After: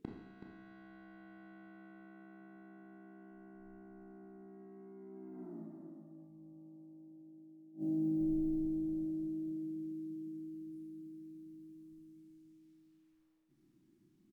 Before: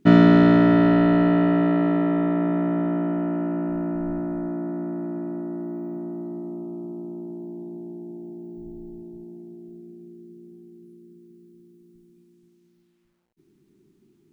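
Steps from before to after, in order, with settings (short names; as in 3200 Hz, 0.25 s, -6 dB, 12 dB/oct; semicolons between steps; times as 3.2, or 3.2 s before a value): Doppler pass-by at 5.51, 35 m/s, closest 5.3 m; dynamic EQ 500 Hz, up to -5 dB, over -54 dBFS, Q 0.92; in parallel at +0.5 dB: negative-ratio compressor -51 dBFS, ratio -0.5; on the sum: flipped gate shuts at -44 dBFS, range -28 dB; on a send: echo 0.376 s -9.5 dB; on the sum: Schroeder reverb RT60 0.81 s, combs from 28 ms, DRR 1.5 dB; gain +14 dB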